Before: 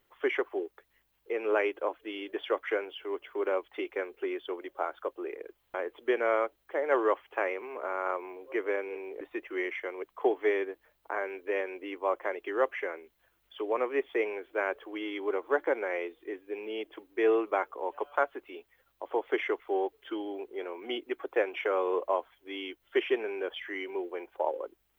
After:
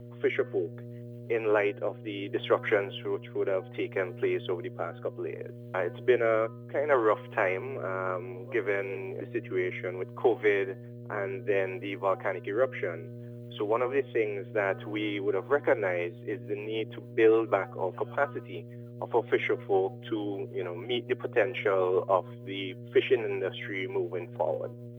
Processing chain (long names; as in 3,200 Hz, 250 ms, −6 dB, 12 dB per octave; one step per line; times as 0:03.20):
hum removal 252.2 Hz, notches 7
hum with harmonics 120 Hz, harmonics 5, −47 dBFS −5 dB per octave
rotating-speaker cabinet horn 0.65 Hz, later 6.7 Hz, at 0:14.98
level +5 dB